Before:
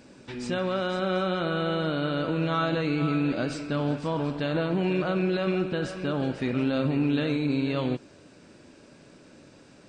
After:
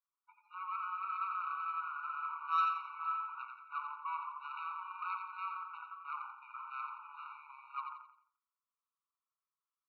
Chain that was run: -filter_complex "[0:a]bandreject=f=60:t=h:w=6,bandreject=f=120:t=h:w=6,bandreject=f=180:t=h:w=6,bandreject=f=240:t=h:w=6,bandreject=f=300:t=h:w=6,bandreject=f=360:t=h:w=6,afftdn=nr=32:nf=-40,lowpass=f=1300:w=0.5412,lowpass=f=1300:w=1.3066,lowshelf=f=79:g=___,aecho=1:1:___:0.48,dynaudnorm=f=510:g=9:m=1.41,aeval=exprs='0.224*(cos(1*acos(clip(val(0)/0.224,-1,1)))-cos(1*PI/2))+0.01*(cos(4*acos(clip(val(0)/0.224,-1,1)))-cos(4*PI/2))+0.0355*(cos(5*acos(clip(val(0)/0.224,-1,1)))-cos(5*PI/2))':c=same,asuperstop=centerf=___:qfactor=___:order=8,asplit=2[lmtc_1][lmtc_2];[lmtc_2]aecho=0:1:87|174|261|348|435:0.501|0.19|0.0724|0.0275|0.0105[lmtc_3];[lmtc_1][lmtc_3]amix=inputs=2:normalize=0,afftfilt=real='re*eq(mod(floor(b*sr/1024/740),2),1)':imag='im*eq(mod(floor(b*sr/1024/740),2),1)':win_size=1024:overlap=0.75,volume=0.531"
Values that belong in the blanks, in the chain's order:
-11, 1.7, 700, 1.8